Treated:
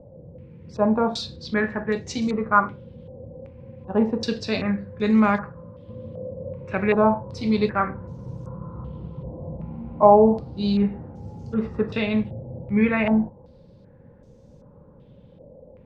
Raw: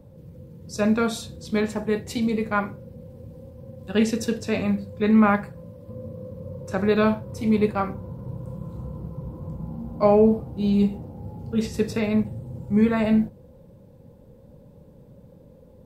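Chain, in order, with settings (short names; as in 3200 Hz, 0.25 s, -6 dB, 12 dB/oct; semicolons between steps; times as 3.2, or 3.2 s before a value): 1.36–2.22 air absorption 69 m; stepped low-pass 2.6 Hz 660–6200 Hz; gain -1 dB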